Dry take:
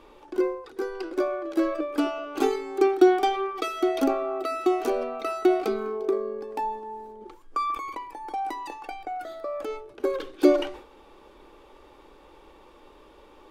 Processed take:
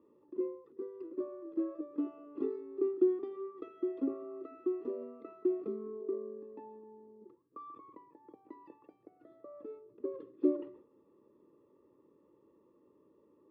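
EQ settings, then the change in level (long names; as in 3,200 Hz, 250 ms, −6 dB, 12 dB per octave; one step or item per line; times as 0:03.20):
moving average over 58 samples
high-pass filter 120 Hz 24 dB per octave
high-frequency loss of the air 200 metres
−6.5 dB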